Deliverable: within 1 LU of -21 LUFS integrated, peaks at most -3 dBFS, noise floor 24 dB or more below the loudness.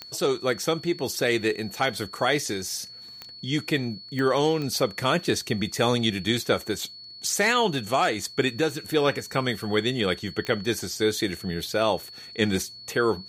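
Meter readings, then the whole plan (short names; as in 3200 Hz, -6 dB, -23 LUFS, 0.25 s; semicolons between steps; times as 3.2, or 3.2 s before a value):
clicks 5; steady tone 4400 Hz; tone level -41 dBFS; loudness -25.5 LUFS; peak -8.5 dBFS; loudness target -21.0 LUFS
-> de-click; notch 4400 Hz, Q 30; gain +4.5 dB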